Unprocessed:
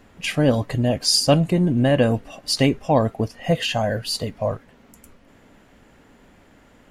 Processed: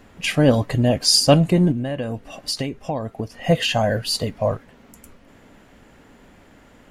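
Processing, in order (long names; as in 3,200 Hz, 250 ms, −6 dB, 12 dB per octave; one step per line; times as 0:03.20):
0:01.71–0:03.32: downward compressor 10 to 1, threshold −25 dBFS, peak gain reduction 13.5 dB
level +2.5 dB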